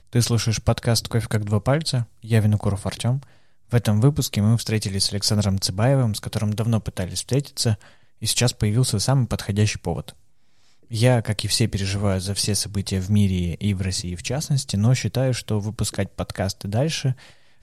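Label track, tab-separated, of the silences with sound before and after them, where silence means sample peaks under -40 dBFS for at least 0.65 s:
10.130000	10.910000	silence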